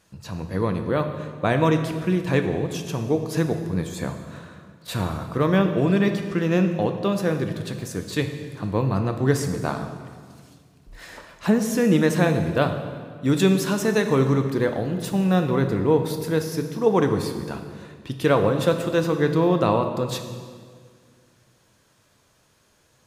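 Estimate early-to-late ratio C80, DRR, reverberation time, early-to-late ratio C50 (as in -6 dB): 9.5 dB, 6.0 dB, 1.9 s, 8.0 dB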